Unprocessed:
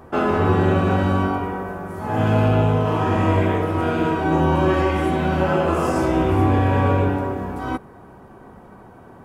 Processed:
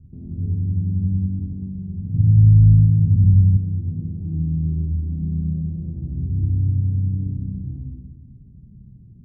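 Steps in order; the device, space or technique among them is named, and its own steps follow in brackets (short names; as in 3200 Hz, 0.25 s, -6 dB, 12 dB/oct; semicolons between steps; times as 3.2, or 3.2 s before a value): club heard from the street (limiter -16.5 dBFS, peak gain reduction 10 dB; LPF 160 Hz 24 dB/oct; reverb RT60 1.4 s, pre-delay 47 ms, DRR -1 dB); 2.14–3.57 low shelf 170 Hz +11 dB; gain +4 dB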